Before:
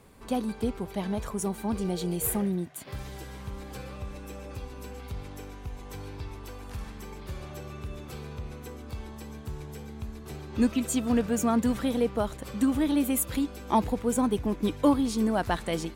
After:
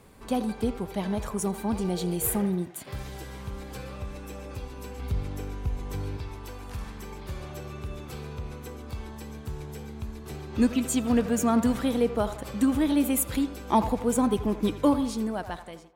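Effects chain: fade out at the end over 1.29 s; 4.99–6.17 s: bass shelf 370 Hz +7.5 dB; band-passed feedback delay 84 ms, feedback 50%, band-pass 920 Hz, level -10.5 dB; trim +1.5 dB

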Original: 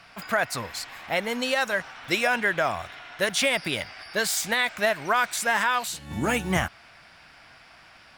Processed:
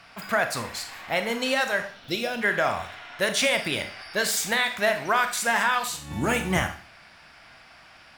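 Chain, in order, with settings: 1.87–2.41 s: graphic EQ 1/2/4/8 kHz -11/-11/+5/-9 dB; Schroeder reverb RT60 0.44 s, combs from 27 ms, DRR 7 dB

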